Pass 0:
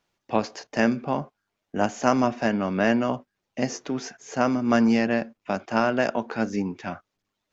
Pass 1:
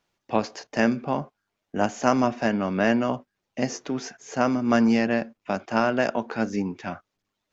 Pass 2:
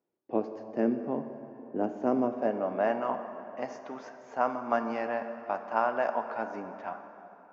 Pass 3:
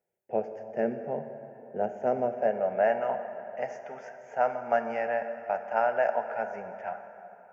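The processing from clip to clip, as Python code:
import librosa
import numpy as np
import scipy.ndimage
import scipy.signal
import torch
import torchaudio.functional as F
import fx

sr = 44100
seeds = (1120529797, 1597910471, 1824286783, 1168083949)

y1 = x
y2 = fx.filter_sweep_bandpass(y1, sr, from_hz=370.0, to_hz=900.0, start_s=2.14, end_s=3.0, q=1.9)
y2 = fx.rev_plate(y2, sr, seeds[0], rt60_s=3.4, hf_ratio=0.65, predelay_ms=0, drr_db=8.0)
y3 = fx.fixed_phaser(y2, sr, hz=1100.0, stages=6)
y3 = y3 * librosa.db_to_amplitude(4.0)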